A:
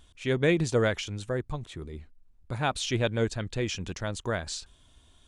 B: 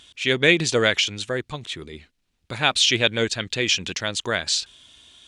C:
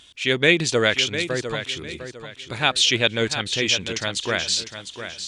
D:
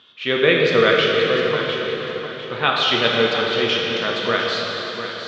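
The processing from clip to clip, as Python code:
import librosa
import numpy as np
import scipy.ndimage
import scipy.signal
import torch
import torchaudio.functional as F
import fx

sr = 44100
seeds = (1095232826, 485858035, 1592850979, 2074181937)

y1 = fx.weighting(x, sr, curve='D')
y1 = y1 * librosa.db_to_amplitude(4.5)
y2 = fx.echo_feedback(y1, sr, ms=703, feedback_pct=31, wet_db=-10.0)
y3 = fx.cabinet(y2, sr, low_hz=120.0, low_slope=24, high_hz=3900.0, hz=(310.0, 450.0, 1200.0, 2300.0), db=(-3, 6, 10, -4))
y3 = fx.rev_plate(y3, sr, seeds[0], rt60_s=3.8, hf_ratio=0.95, predelay_ms=0, drr_db=-2.0)
y3 = y3 * librosa.db_to_amplitude(-1.0)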